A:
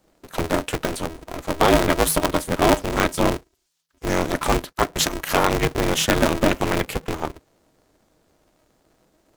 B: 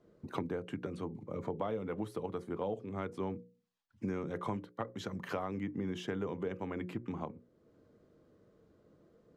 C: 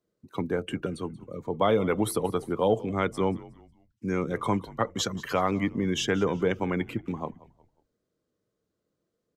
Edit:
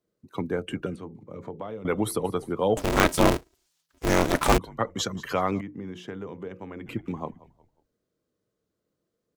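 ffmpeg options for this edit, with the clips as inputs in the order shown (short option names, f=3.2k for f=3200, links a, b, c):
-filter_complex "[1:a]asplit=2[a][b];[2:a]asplit=4[c][d][e][f];[c]atrim=end=0.962[g];[a]atrim=start=0.958:end=1.852[h];[d]atrim=start=1.848:end=2.772[i];[0:a]atrim=start=2.768:end=4.582[j];[e]atrim=start=4.578:end=5.612[k];[b]atrim=start=5.608:end=6.862[l];[f]atrim=start=6.858[m];[g][h]acrossfade=d=0.004:c1=hsin:c2=hsin[n];[n][i]acrossfade=d=0.004:c1=hsin:c2=hsin[o];[o][j]acrossfade=d=0.004:c1=hsin:c2=hsin[p];[p][k]acrossfade=d=0.004:c1=hsin:c2=hsin[q];[q][l]acrossfade=d=0.004:c1=hsin:c2=hsin[r];[r][m]acrossfade=d=0.004:c1=hsin:c2=hsin"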